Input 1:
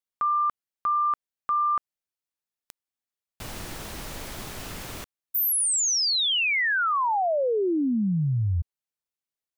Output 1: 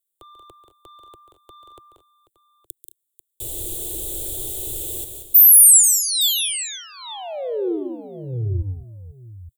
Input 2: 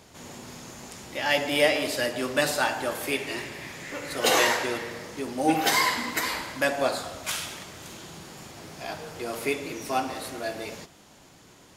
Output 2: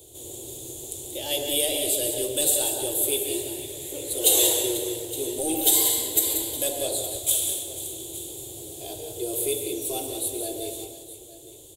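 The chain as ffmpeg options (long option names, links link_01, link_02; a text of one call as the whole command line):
ffmpeg -i in.wav -filter_complex "[0:a]acrossover=split=100|940|5300[link_01][link_02][link_03][link_04];[link_02]asoftclip=type=tanh:threshold=-28.5dB[link_05];[link_01][link_05][link_03][link_04]amix=inputs=4:normalize=0,firequalizer=gain_entry='entry(120,0);entry(190,-25);entry(340,6);entry(1200,-26);entry(1900,-24);entry(3500,4);entry(5100,-13);entry(7700,11);entry(15000,13)':delay=0.05:min_phase=1,aecho=1:1:140|183|213|491|866:0.251|0.398|0.141|0.168|0.158,volume=2.5dB" out.wav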